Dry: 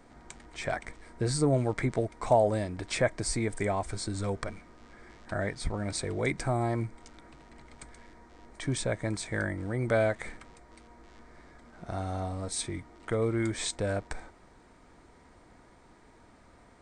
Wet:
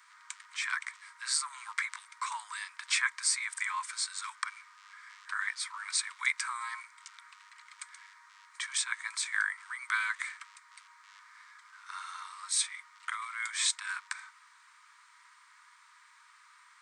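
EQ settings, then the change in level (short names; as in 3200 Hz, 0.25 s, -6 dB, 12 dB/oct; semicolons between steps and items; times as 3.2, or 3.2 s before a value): steep high-pass 1000 Hz 96 dB/oct; +5.0 dB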